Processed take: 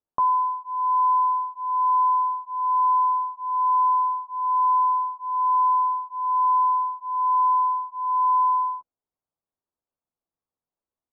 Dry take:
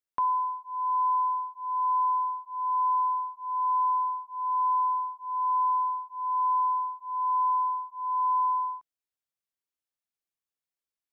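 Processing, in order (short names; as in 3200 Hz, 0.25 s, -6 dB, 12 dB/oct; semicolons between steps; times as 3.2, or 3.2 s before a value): dynamic EQ 790 Hz, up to -7 dB, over -44 dBFS, Q 2.8; LPF 1100 Hz 24 dB/oct; doubler 12 ms -11 dB; gain +8 dB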